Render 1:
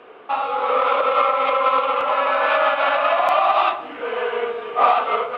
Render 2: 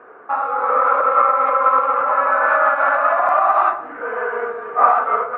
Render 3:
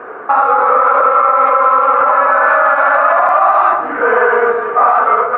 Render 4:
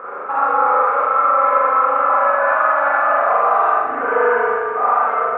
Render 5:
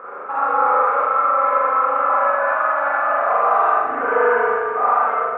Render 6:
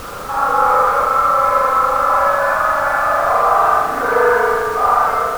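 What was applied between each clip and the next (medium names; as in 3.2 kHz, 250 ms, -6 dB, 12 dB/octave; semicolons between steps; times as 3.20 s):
resonant high shelf 2.2 kHz -12.5 dB, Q 3; trim -1.5 dB
gain riding within 4 dB 0.5 s; loudness maximiser +11 dB; trim -1 dB
reverse echo 821 ms -12.5 dB; spring tank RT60 1 s, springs 39 ms, chirp 30 ms, DRR -5 dB; trim -11.5 dB
level rider; trim -4 dB
added noise pink -37 dBFS; trim +3 dB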